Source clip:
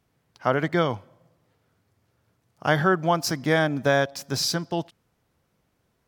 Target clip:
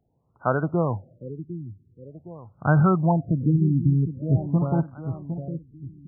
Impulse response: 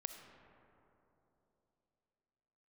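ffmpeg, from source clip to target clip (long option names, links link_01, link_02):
-af "asubboost=boost=6.5:cutoff=180,aecho=1:1:759|1518|2277|3036:0.335|0.131|0.0509|0.0199,afftfilt=real='re*lt(b*sr/1024,370*pow(1600/370,0.5+0.5*sin(2*PI*0.46*pts/sr)))':imag='im*lt(b*sr/1024,370*pow(1600/370,0.5+0.5*sin(2*PI*0.46*pts/sr)))':win_size=1024:overlap=0.75"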